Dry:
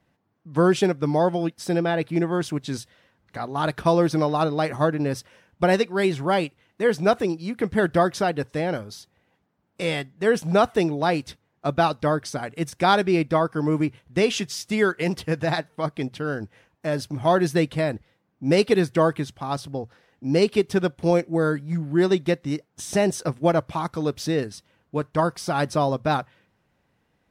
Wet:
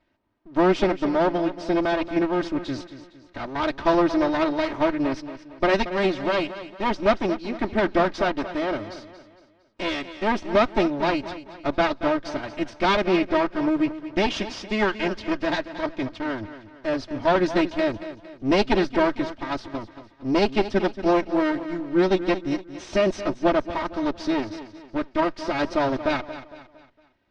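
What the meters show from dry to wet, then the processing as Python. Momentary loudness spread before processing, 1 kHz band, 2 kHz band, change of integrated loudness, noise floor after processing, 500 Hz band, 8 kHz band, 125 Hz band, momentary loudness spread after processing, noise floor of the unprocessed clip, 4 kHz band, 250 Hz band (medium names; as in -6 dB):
10 LU, -0.5 dB, +1.0 dB, -0.5 dB, -56 dBFS, -1.0 dB, -9.5 dB, -8.5 dB, 11 LU, -70 dBFS, 0.0 dB, +0.5 dB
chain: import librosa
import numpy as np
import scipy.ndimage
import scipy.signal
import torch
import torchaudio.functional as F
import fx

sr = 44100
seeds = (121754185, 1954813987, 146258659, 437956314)

y = fx.lower_of_two(x, sr, delay_ms=3.2)
y = scipy.signal.sosfilt(scipy.signal.butter(4, 5200.0, 'lowpass', fs=sr, output='sos'), y)
y = fx.echo_feedback(y, sr, ms=229, feedback_pct=41, wet_db=-13)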